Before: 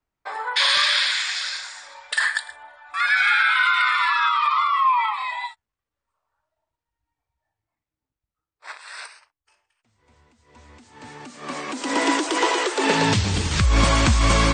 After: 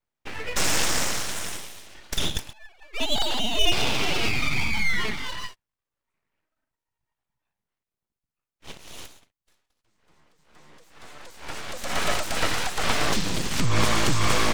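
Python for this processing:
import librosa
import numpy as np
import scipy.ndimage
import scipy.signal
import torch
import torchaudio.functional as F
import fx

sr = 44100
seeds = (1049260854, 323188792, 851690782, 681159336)

y = fx.sine_speech(x, sr, at=(2.53, 3.72))
y = np.abs(y)
y = y * 10.0 ** (-1.5 / 20.0)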